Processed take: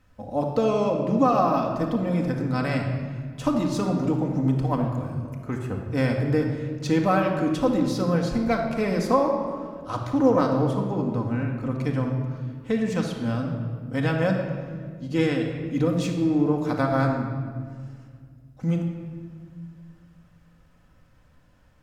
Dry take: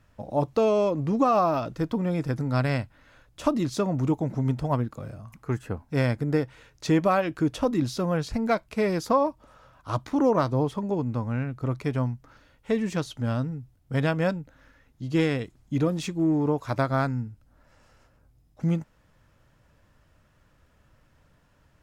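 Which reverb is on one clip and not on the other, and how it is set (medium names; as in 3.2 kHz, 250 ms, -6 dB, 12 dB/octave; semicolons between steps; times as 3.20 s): simulated room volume 2800 m³, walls mixed, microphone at 2 m; trim -1.5 dB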